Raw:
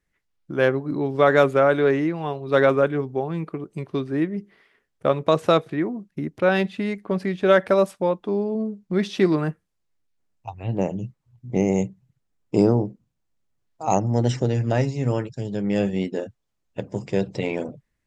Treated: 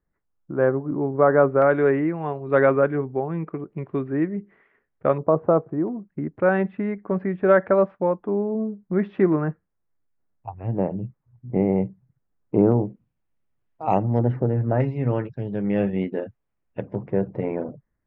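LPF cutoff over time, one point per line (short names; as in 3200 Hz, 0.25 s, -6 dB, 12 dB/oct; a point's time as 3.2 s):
LPF 24 dB/oct
1400 Hz
from 1.62 s 2100 Hz
from 5.18 s 1100 Hz
from 5.88 s 1800 Hz
from 12.72 s 2800 Hz
from 14.19 s 1500 Hz
from 14.8 s 2400 Hz
from 16.95 s 1600 Hz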